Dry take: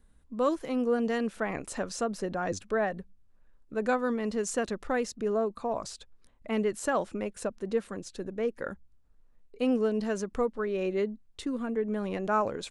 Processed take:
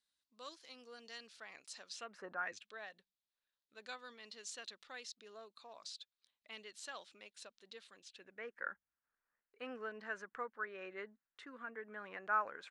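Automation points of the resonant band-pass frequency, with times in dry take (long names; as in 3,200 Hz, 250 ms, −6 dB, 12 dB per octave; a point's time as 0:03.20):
resonant band-pass, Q 2.8
0:01.87 4,500 Hz
0:02.28 1,100 Hz
0:02.70 3,900 Hz
0:07.94 3,900 Hz
0:08.49 1,600 Hz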